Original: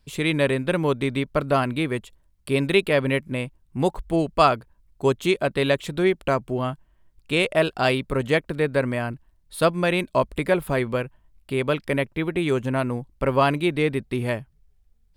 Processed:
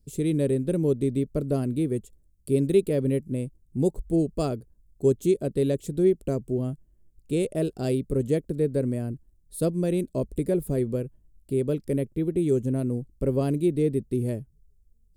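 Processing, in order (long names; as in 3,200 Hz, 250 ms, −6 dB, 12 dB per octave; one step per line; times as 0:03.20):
drawn EQ curve 430 Hz 0 dB, 970 Hz −23 dB, 2,200 Hz −21 dB, 3,200 Hz −19 dB, 7,300 Hz −1 dB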